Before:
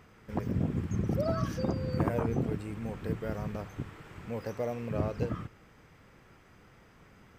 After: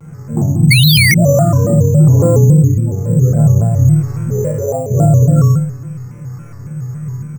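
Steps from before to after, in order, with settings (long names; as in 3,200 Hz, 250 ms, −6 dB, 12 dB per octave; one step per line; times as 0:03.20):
expanding power law on the bin magnitudes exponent 2.1
parametric band 140 Hz +14 dB 0.25 octaves
in parallel at 0 dB: downward compressor, threshold −40 dBFS, peak gain reduction 21 dB
on the sum: high-frequency loss of the air 150 metres
resonators tuned to a chord G#2 sus4, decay 0.85 s
on a send: loudspeakers that aren't time-aligned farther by 17 metres −1 dB, 39 metres −7 dB
on the sum: sound drawn into the spectrogram fall, 0:00.71–0:01.14, 1,900–5,100 Hz −36 dBFS
bad sample-rate conversion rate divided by 6×, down none, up hold
boost into a limiter +33 dB
pitch modulation by a square or saw wave square 3.6 Hz, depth 160 cents
level −1 dB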